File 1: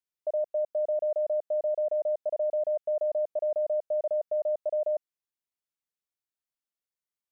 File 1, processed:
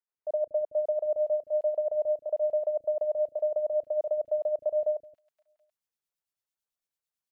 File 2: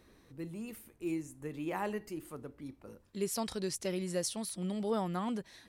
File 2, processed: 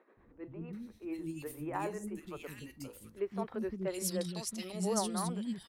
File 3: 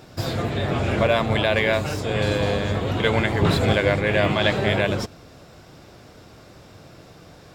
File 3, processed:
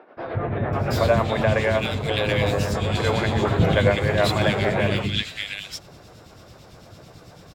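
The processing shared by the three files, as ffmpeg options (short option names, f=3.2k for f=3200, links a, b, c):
-filter_complex "[0:a]tremolo=f=9:d=0.55,acrossover=split=310|2100[a][b][c];[a]adelay=170[d];[c]adelay=730[e];[d][b][e]amix=inputs=3:normalize=0,volume=3.5dB"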